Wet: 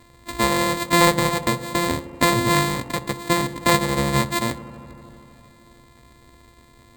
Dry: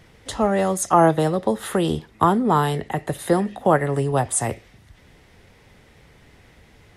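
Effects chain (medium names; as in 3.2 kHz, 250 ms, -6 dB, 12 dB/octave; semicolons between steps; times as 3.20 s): sorted samples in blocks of 128 samples; rippled EQ curve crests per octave 1, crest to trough 9 dB; feedback echo behind a low-pass 78 ms, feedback 85%, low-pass 1.4 kHz, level -16 dB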